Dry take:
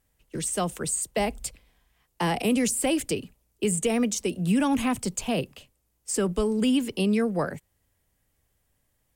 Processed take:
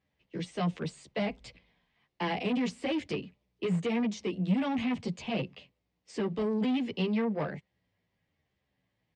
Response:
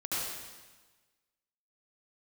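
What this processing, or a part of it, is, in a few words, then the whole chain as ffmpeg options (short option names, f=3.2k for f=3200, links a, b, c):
barber-pole flanger into a guitar amplifier: -filter_complex "[0:a]asplit=2[a][b];[b]adelay=11.1,afreqshift=-0.94[c];[a][c]amix=inputs=2:normalize=1,asoftclip=type=tanh:threshold=-26dB,highpass=93,equalizer=f=180:t=q:w=4:g=6,equalizer=f=1.4k:t=q:w=4:g=-5,equalizer=f=2.1k:t=q:w=4:g=4,lowpass=f=4.5k:w=0.5412,lowpass=f=4.5k:w=1.3066"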